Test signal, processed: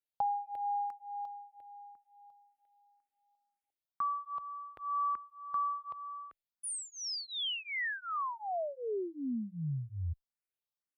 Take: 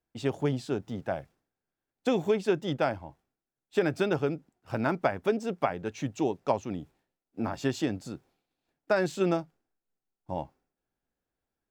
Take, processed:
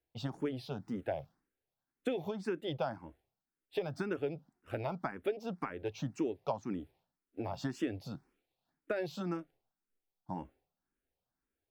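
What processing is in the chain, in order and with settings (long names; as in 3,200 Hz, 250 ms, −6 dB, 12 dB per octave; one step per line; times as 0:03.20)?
downward compressor, threshold −29 dBFS
parametric band 7,000 Hz −8.5 dB 0.6 octaves
frequency shifter mixed with the dry sound +1.9 Hz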